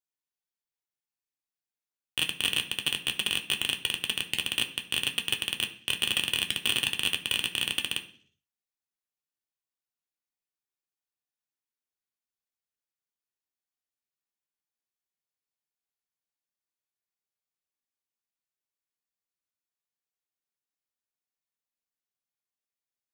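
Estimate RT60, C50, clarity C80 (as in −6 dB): 0.50 s, 13.0 dB, 17.0 dB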